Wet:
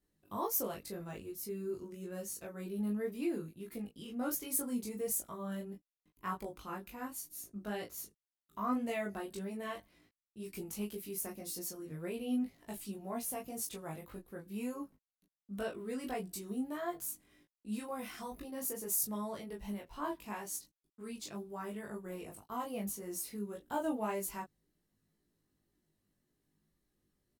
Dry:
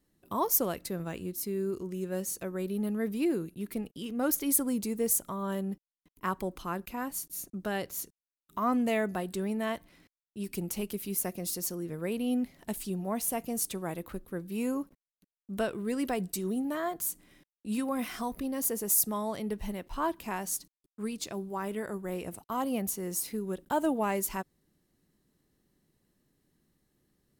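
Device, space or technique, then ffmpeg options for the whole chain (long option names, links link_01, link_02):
double-tracked vocal: -filter_complex "[0:a]asplit=2[link_01][link_02];[link_02]adelay=20,volume=-2.5dB[link_03];[link_01][link_03]amix=inputs=2:normalize=0,flanger=delay=17:depth=2.3:speed=1.9,volume=-6dB"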